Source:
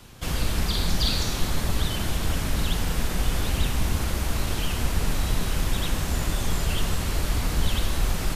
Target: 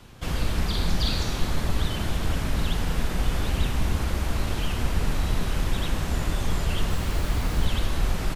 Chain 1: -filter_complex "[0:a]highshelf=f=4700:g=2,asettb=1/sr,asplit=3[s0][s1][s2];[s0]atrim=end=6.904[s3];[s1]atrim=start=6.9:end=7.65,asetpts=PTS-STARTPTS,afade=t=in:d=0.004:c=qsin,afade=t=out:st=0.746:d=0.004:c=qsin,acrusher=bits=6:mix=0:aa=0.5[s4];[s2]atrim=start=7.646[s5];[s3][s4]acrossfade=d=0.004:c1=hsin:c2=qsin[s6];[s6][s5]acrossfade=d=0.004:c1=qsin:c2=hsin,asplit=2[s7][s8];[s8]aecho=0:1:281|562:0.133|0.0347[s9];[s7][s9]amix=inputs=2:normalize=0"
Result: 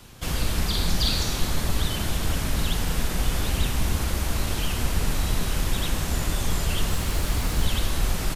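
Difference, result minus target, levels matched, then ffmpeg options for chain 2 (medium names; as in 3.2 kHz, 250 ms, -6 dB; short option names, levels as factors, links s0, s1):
8 kHz band +6.0 dB
-filter_complex "[0:a]highshelf=f=4700:g=-8,asettb=1/sr,asplit=3[s0][s1][s2];[s0]atrim=end=6.904[s3];[s1]atrim=start=6.9:end=7.65,asetpts=PTS-STARTPTS,afade=t=in:d=0.004:c=qsin,afade=t=out:st=0.746:d=0.004:c=qsin,acrusher=bits=6:mix=0:aa=0.5[s4];[s2]atrim=start=7.646[s5];[s3][s4]acrossfade=d=0.004:c1=hsin:c2=qsin[s6];[s6][s5]acrossfade=d=0.004:c1=qsin:c2=hsin,asplit=2[s7][s8];[s8]aecho=0:1:281|562:0.133|0.0347[s9];[s7][s9]amix=inputs=2:normalize=0"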